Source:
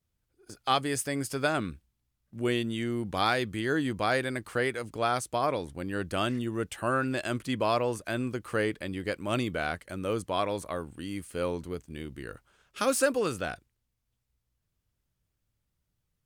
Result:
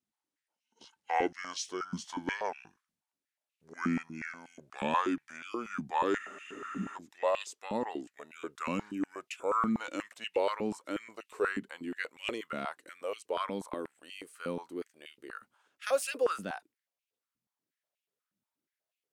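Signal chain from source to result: speed glide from 60% -> 110%; spectral freeze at 6.19, 0.76 s; stepped high-pass 8.3 Hz 210–2600 Hz; gain -8 dB

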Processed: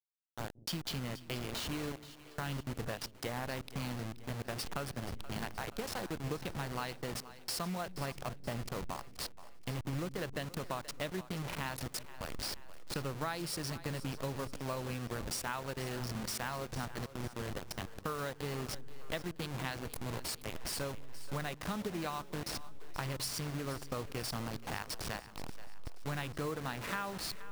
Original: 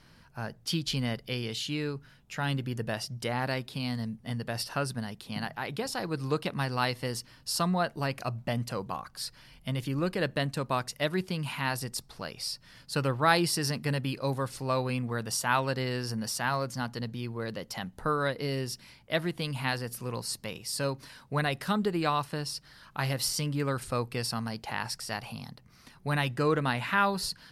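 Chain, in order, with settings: level-crossing sampler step -30 dBFS; compressor 6:1, threshold -33 dBFS, peak gain reduction 14.5 dB; split-band echo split 380 Hz, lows 0.176 s, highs 0.478 s, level -15 dB; gain -2 dB

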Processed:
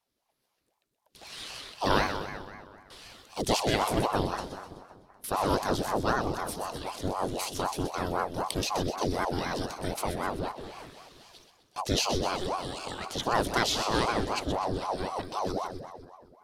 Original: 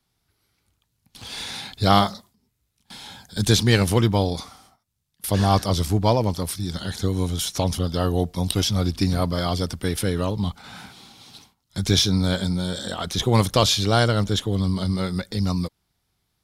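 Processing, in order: split-band echo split 1700 Hz, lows 0.191 s, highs 0.126 s, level -9 dB; ring modulator with a swept carrier 560 Hz, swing 70%, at 3.9 Hz; gain -6 dB

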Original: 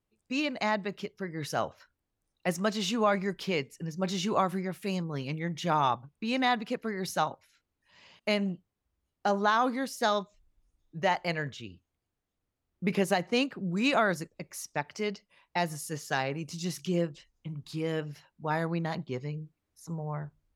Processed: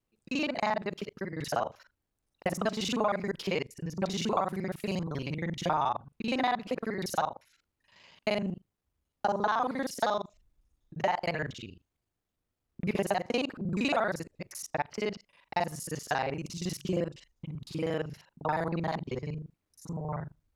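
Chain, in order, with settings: local time reversal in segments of 39 ms; dynamic EQ 790 Hz, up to +6 dB, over -39 dBFS, Q 1; compressor 3:1, threshold -26 dBFS, peak gain reduction 8 dB

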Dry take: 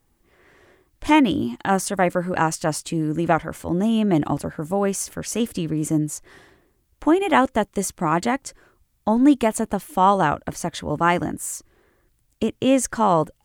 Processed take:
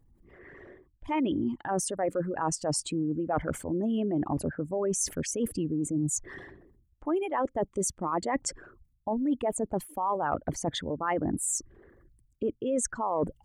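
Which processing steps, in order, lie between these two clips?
formant sharpening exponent 2; reverse; compressor 6:1, threshold -31 dBFS, peak gain reduction 19 dB; reverse; gain +4 dB

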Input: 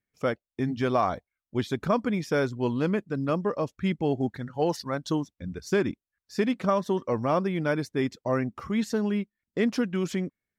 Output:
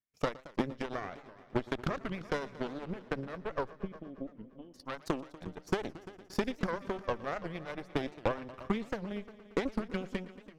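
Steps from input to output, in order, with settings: limiter -20 dBFS, peak gain reduction 8.5 dB; transient shaper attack +11 dB, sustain -10 dB; 3.75–4.74 vocal tract filter i; added harmonics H 3 -19 dB, 6 -15 dB, 7 -34 dB, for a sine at -9 dBFS; multi-head echo 0.115 s, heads all three, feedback 46%, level -20 dB; record warp 78 rpm, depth 250 cents; gain -8 dB

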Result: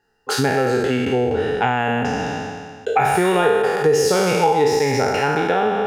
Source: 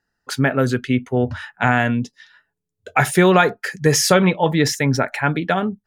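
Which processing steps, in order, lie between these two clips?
spectral trails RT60 1.71 s; small resonant body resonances 440/800/2800 Hz, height 16 dB, ringing for 55 ms; compressor 3:1, threshold -22 dBFS, peak gain reduction 16.5 dB; gain +3 dB

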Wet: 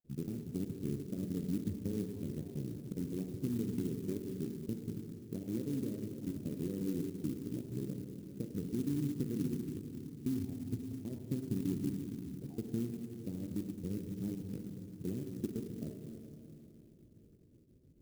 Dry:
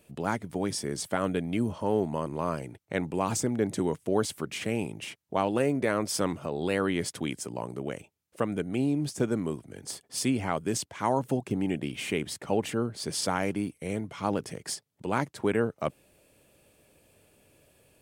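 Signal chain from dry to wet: random spectral dropouts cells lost 28%; compressor, threshold -34 dBFS, peak gain reduction 12.5 dB; inverse Chebyshev low-pass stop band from 1500 Hz, stop band 70 dB; reverb RT60 3.4 s, pre-delay 32 ms, DRR 2.5 dB; clock jitter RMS 0.058 ms; gain +2.5 dB

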